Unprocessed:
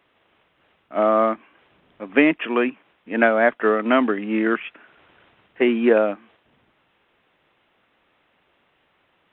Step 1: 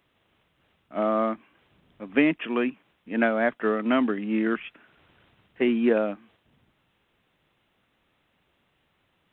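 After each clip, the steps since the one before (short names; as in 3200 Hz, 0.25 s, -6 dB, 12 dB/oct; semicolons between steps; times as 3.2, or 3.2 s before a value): tone controls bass +10 dB, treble +11 dB; gain -7.5 dB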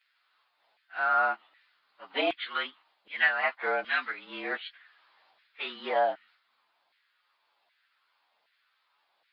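inharmonic rescaling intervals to 110%; LFO high-pass saw down 1.3 Hz 680–1900 Hz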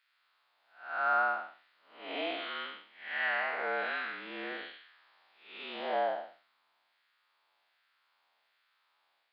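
time blur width 0.247 s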